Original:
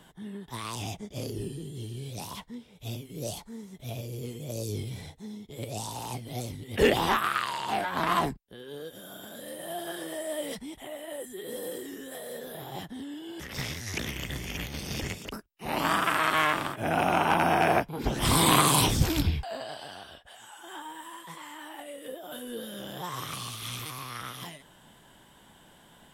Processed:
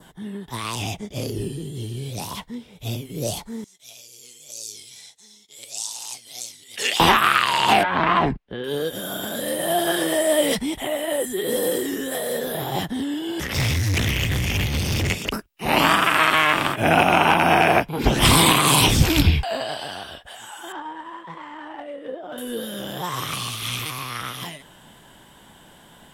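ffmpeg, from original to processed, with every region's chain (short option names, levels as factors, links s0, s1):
-filter_complex "[0:a]asettb=1/sr,asplit=3[s0][s1][s2];[s0]atrim=end=3.644[s3];[s1]atrim=start=3.64:end=7,asetpts=PTS-STARTPTS,afade=t=in:d=0.004:c=qsin,afade=t=out:st=3.356:d=0.004:c=qsin,acompressor=mode=upward:threshold=0.00562:ratio=2.5:attack=3.2:release=140:knee=2.83:detection=peak,bandpass=f=6500:t=q:w=1.5[s4];[s2]atrim=start=6.996[s5];[s3][s4]acrossfade=d=0.004:c1=hsin:c2=qsin[s6];[s6][s5]acrossfade=d=0.004:c1=qsin:c2=hsin,asettb=1/sr,asplit=3[s7][s8][s9];[s7]atrim=end=7.834[s10];[s8]atrim=start=7.83:end=8.64,asetpts=PTS-STARTPTS,afade=t=in:d=0.004:c=qsin,afade=t=out:st=0.806:d=0.004:c=qsin,acompressor=threshold=0.0178:ratio=2:attack=3.2:release=140:knee=1:detection=peak,lowpass=2600[s11];[s9]atrim=start=8.636[s12];[s10][s11]acrossfade=d=0.004:c1=hsin:c2=qsin[s13];[s13][s12]acrossfade=d=0.004:c1=qsin:c2=hsin,asettb=1/sr,asplit=3[s14][s15][s16];[s14]atrim=end=13.554[s17];[s15]atrim=start=13.55:end=15.1,asetpts=PTS-STARTPTS,afade=t=in:d=0.004:c=qsin,afade=t=out:st=1.546:d=0.004:c=qsin,equalizer=f=95:w=2:g=14,asoftclip=type=hard:threshold=0.0282[s18];[s16]atrim=start=15.096[s19];[s17][s18]acrossfade=d=0.004:c1=hsin:c2=qsin[s20];[s20][s19]acrossfade=d=0.004:c1=qsin:c2=hsin,asettb=1/sr,asplit=3[s21][s22][s23];[s21]atrim=end=20.724[s24];[s22]atrim=start=20.72:end=22.38,asetpts=PTS-STARTPTS,afade=t=in:d=0.004:c=qsin,afade=t=out:st=1.656:d=0.004:c=qsin,lowshelf=f=160:g=-6,adynamicsmooth=sensitivity=2.5:basefreq=1700[s25];[s23]atrim=start=22.376[s26];[s24][s25]acrossfade=d=0.004:c1=hsin:c2=qsin[s27];[s27][s26]acrossfade=d=0.004:c1=qsin:c2=hsin,adynamicequalizer=threshold=0.00562:dfrequency=2600:dqfactor=1.9:tfrequency=2600:tqfactor=1.9:attack=5:release=100:ratio=0.375:range=3:mode=boostabove:tftype=bell,dynaudnorm=f=780:g=13:m=3.76,alimiter=limit=0.282:level=0:latency=1:release=290,volume=2.24"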